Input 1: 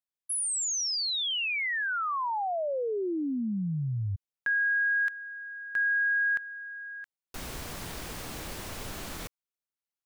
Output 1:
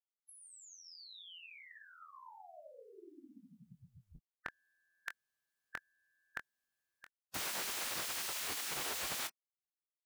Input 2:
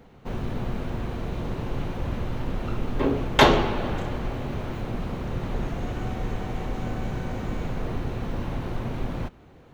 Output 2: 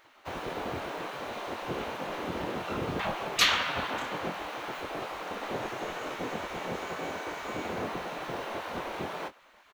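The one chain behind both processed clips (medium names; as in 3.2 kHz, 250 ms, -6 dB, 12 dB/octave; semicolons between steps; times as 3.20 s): spectral gate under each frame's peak -15 dB weak; doubling 23 ms -9 dB; trim +3 dB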